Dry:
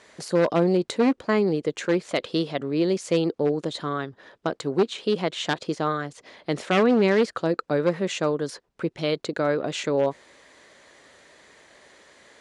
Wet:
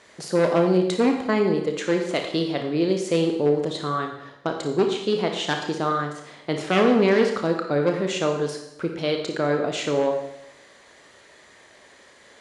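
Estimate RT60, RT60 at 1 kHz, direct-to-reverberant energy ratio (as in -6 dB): 0.85 s, 0.80 s, 3.0 dB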